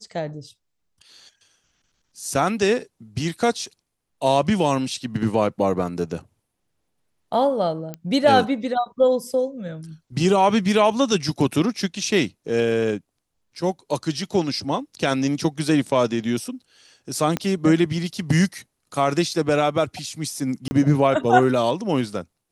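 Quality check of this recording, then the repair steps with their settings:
0:07.94: click −17 dBFS
0:17.37: click −10 dBFS
0:20.68–0:20.71: drop-out 30 ms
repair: click removal
repair the gap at 0:20.68, 30 ms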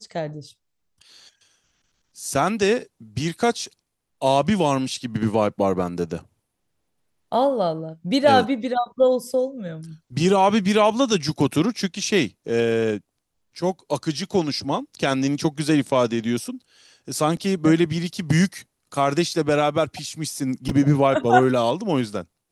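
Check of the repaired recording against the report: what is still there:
0:17.37: click

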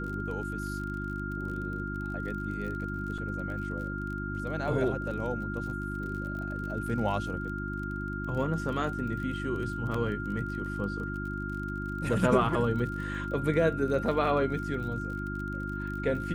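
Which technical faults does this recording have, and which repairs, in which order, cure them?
surface crackle 32 per second −38 dBFS
mains hum 50 Hz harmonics 7 −36 dBFS
whistle 1,400 Hz −37 dBFS
0:03.18: drop-out 4.2 ms
0:09.94: drop-out 4 ms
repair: click removal
notch filter 1,400 Hz, Q 30
hum removal 50 Hz, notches 7
repair the gap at 0:03.18, 4.2 ms
repair the gap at 0:09.94, 4 ms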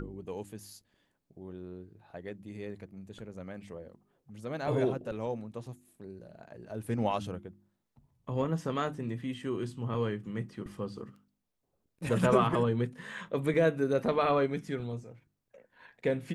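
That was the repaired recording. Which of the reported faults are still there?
none of them is left

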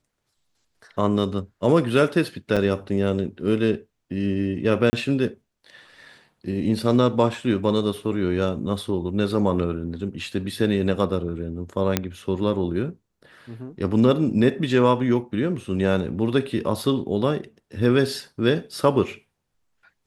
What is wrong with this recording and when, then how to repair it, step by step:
0:02.56–0:02.57: drop-out 6.6 ms
0:04.90–0:04.93: drop-out 30 ms
0:11.97: click −4 dBFS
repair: click removal
repair the gap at 0:02.56, 6.6 ms
repair the gap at 0:04.90, 30 ms

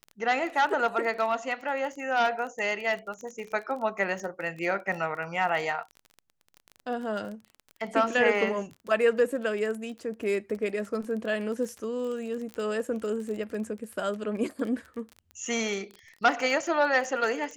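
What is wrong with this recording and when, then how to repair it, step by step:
surface crackle 22 per second −34 dBFS
0:12.54: click −24 dBFS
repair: click removal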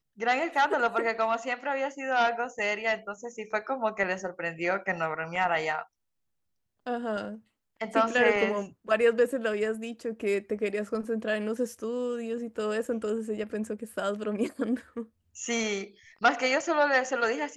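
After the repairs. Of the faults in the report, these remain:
none of them is left

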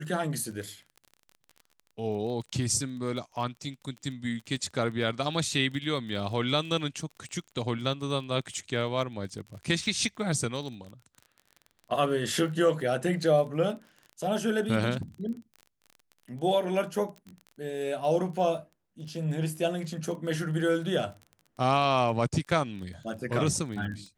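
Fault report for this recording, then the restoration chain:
surface crackle 25 per second −38 dBFS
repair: click removal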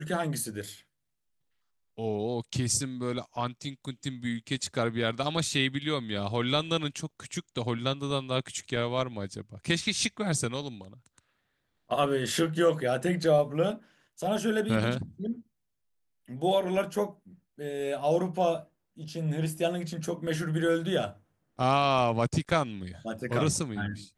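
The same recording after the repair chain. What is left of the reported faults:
none of them is left

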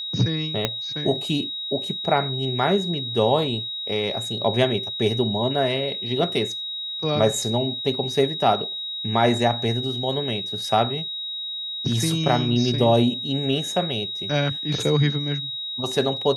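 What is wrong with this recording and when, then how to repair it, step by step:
whistle 3,800 Hz −28 dBFS
0:00.65: click −6 dBFS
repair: click removal
notch filter 3,800 Hz, Q 30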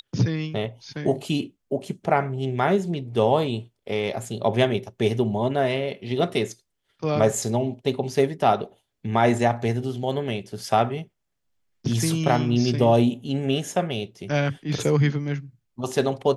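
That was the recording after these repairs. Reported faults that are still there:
0:00.65: click

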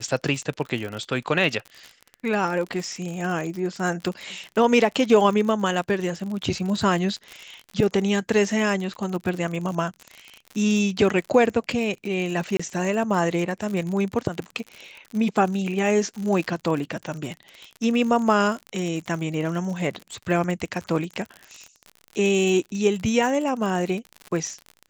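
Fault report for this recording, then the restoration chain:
surface crackle 57 per second −29 dBFS
0:12.57–0:12.60: drop-out 25 ms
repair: click removal
repair the gap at 0:12.57, 25 ms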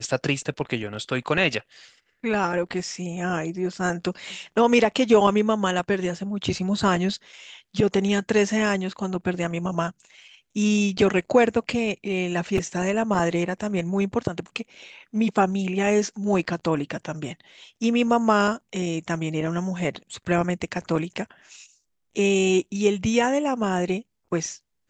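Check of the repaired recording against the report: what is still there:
none of them is left

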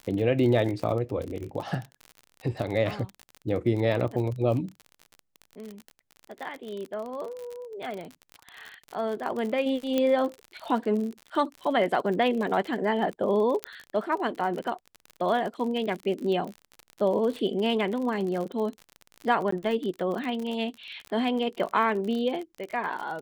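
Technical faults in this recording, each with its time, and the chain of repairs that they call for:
surface crackle 47 per second −32 dBFS
0:09.98: click −13 dBFS
0:13.64: click −12 dBFS
0:19.51–0:19.52: drop-out 14 ms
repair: click removal
repair the gap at 0:19.51, 14 ms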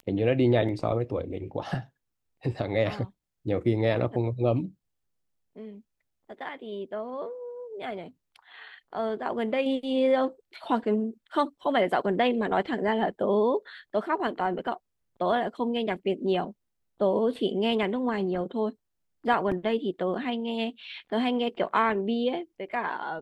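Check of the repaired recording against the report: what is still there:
none of them is left

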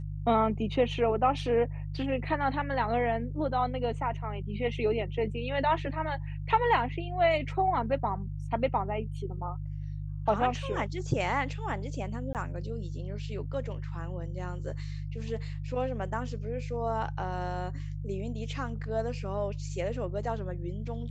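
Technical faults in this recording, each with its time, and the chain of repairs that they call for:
mains hum 50 Hz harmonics 3 −36 dBFS
0:12.33–0:12.35: drop-out 18 ms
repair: hum removal 50 Hz, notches 3
repair the gap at 0:12.33, 18 ms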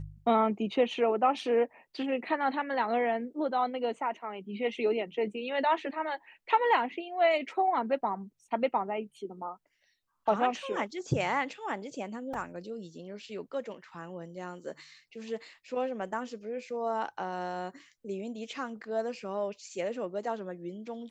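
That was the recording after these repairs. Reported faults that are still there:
none of them is left

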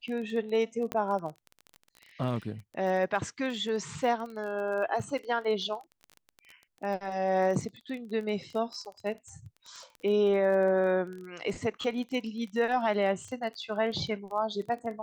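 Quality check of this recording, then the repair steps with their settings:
surface crackle 22 per second −36 dBFS
0:00.92: click −17 dBFS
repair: click removal

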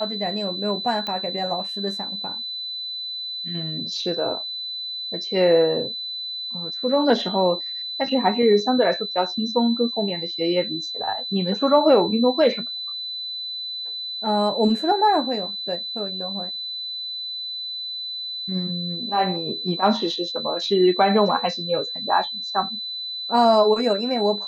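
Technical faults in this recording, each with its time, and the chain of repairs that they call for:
whistle 4,000 Hz −28 dBFS
0:01.07: click −15 dBFS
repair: click removal
notch filter 4,000 Hz, Q 30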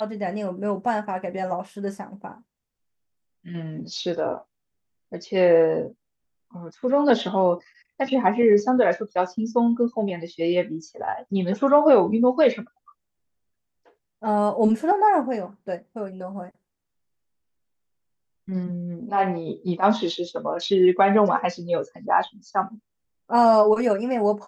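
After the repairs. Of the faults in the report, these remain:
0:01.07: click

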